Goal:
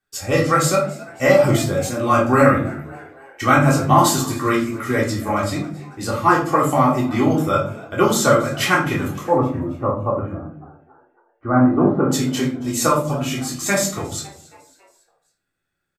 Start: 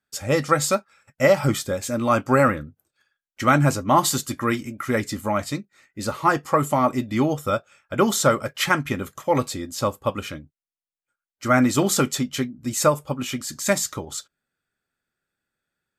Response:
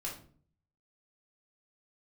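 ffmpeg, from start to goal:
-filter_complex "[0:a]asettb=1/sr,asplit=3[link_01][link_02][link_03];[link_01]atrim=end=9.284[link_04];[link_02]atrim=start=9.28:end=12.09,asetpts=PTS-STARTPTS,afade=type=in:duration=0.004:curve=qsin,afade=type=out:start_time=2.806:duration=0.004:curve=qsin,lowpass=frequency=1200:width=0.5412,lowpass=frequency=1200:width=1.3066[link_05];[link_03]atrim=start=12.086[link_06];[link_04][link_05]acrossfade=duration=0.004:curve1=hsin:curve2=qsin[link_07];[link_07][link_06]acrossfade=duration=0.004:curve1=qsin:curve2=hsin,asplit=5[link_08][link_09][link_10][link_11][link_12];[link_09]adelay=276,afreqshift=90,volume=-21dB[link_13];[link_10]adelay=552,afreqshift=180,volume=-26.5dB[link_14];[link_11]adelay=828,afreqshift=270,volume=-32dB[link_15];[link_12]adelay=1104,afreqshift=360,volume=-37.5dB[link_16];[link_08][link_13][link_14][link_15][link_16]amix=inputs=5:normalize=0[link_17];[1:a]atrim=start_sample=2205[link_18];[link_17][link_18]afir=irnorm=-1:irlink=0,volume=3.5dB"

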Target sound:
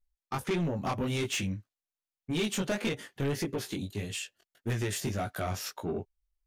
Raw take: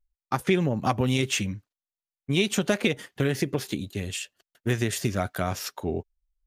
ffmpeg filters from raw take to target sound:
ffmpeg -i in.wav -af "flanger=delay=17.5:depth=4:speed=1.7,asoftclip=type=tanh:threshold=-25dB" out.wav

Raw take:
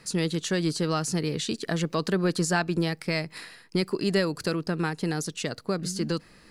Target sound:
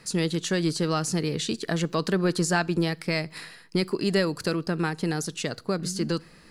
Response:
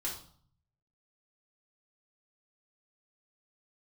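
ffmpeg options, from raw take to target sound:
-filter_complex "[0:a]asplit=2[link_01][link_02];[1:a]atrim=start_sample=2205,adelay=9[link_03];[link_02][link_03]afir=irnorm=-1:irlink=0,volume=-23.5dB[link_04];[link_01][link_04]amix=inputs=2:normalize=0,volume=1dB"

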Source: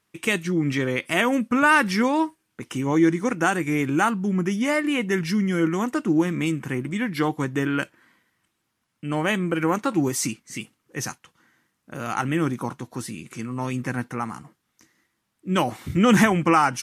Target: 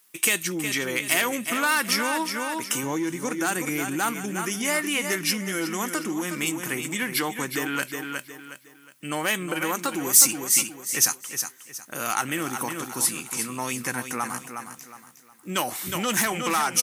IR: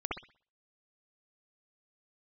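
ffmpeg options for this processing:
-filter_complex "[0:a]aecho=1:1:363|726|1089|1452:0.355|0.114|0.0363|0.0116,asoftclip=type=tanh:threshold=-11.5dB,asettb=1/sr,asplit=3[link_01][link_02][link_03];[link_01]atrim=end=2.834[link_04];[link_02]atrim=start=2.83:end=4.13,asetpts=PTS-STARTPTS,afade=type=in:duration=0.004:curve=qsin,afade=type=out:start_time=1.296:duration=0.004:curve=qsin,lowshelf=frequency=350:gain=6.5[link_05];[link_03]atrim=start=4.126[link_06];[link_04][link_05]acrossfade=duration=0.004:curve1=hsin:curve2=qsin[link_07];[link_07][link_06]acrossfade=duration=0.004:curve1=qsin:curve2=hsin,acompressor=threshold=-24dB:ratio=4,aemphasis=mode=production:type=riaa,volume=2.5dB"

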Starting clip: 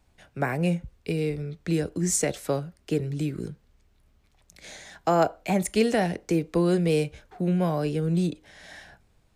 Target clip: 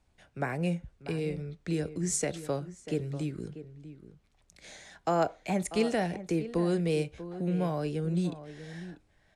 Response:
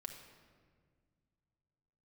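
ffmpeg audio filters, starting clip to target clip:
-filter_complex "[0:a]lowpass=frequency=11000:width=0.5412,lowpass=frequency=11000:width=1.3066,asplit=2[link_01][link_02];[link_02]adelay=641.4,volume=-13dB,highshelf=frequency=4000:gain=-14.4[link_03];[link_01][link_03]amix=inputs=2:normalize=0,volume=-5.5dB"

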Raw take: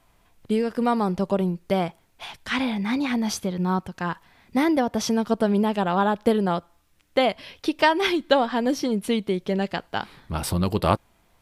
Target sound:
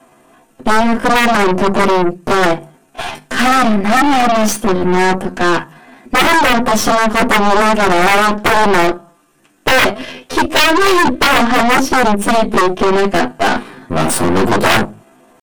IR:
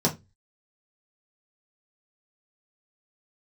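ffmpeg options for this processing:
-filter_complex "[1:a]atrim=start_sample=2205,asetrate=70560,aresample=44100[link_01];[0:a][link_01]afir=irnorm=-1:irlink=0,aeval=exprs='2.82*sin(PI/2*7.08*val(0)/2.82)':channel_layout=same,lowshelf=frequency=380:gain=-6.5,aeval=exprs='3.76*(cos(1*acos(clip(val(0)/3.76,-1,1)))-cos(1*PI/2))+0.531*(cos(8*acos(clip(val(0)/3.76,-1,1)))-cos(8*PI/2))':channel_layout=same,atempo=0.74,volume=-14.5dB"

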